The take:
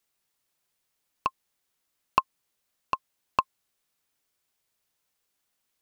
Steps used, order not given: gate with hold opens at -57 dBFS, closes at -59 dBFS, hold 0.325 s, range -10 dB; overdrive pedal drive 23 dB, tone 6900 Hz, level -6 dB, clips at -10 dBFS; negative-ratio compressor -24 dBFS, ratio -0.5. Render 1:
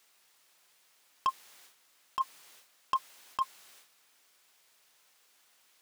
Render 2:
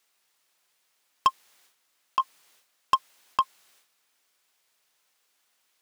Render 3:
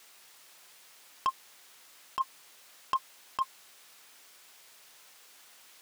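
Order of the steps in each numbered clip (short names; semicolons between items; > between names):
gate with hold > overdrive pedal > negative-ratio compressor; negative-ratio compressor > gate with hold > overdrive pedal; overdrive pedal > negative-ratio compressor > gate with hold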